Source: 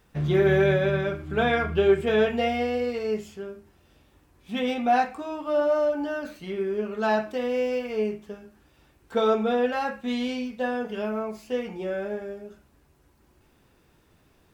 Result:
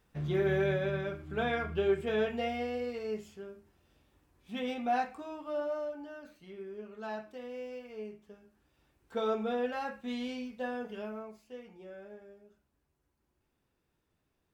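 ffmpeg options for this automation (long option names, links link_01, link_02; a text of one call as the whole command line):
ffmpeg -i in.wav -af "volume=-2dB,afade=type=out:start_time=5.24:duration=0.8:silence=0.446684,afade=type=in:start_time=8.11:duration=1.33:silence=0.446684,afade=type=out:start_time=10.86:duration=0.59:silence=0.354813" out.wav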